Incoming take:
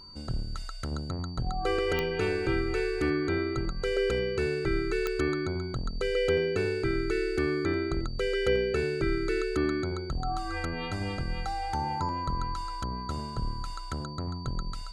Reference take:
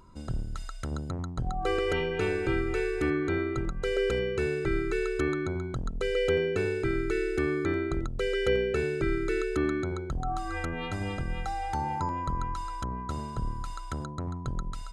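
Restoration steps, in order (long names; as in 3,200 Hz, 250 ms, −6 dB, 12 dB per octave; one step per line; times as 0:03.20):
click removal
notch filter 4,600 Hz, Q 30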